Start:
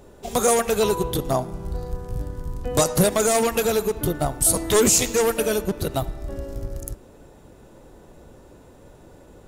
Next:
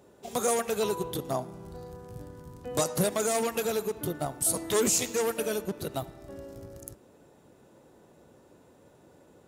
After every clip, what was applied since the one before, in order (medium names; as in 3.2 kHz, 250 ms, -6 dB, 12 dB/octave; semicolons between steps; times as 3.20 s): high-pass 120 Hz 12 dB/octave; trim -8 dB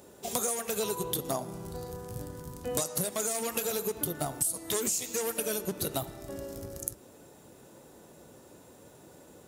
treble shelf 4.9 kHz +11.5 dB; compression 16:1, threshold -30 dBFS, peak gain reduction 17.5 dB; flange 0.75 Hz, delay 3.3 ms, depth 7.3 ms, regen -80%; trim +7.5 dB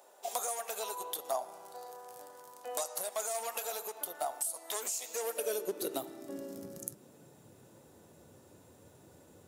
high-pass sweep 720 Hz -> 84 Hz, 4.94–7.83 s; trim -6 dB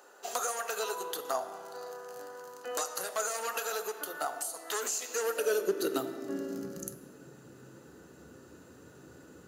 band-stop 6.5 kHz, Q 24; reverberation RT60 2.2 s, pre-delay 3 ms, DRR 13.5 dB; trim -1.5 dB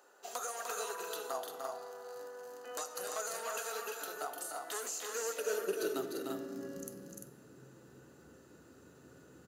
multi-tap echo 300/345 ms -5.5/-5 dB; trim -7 dB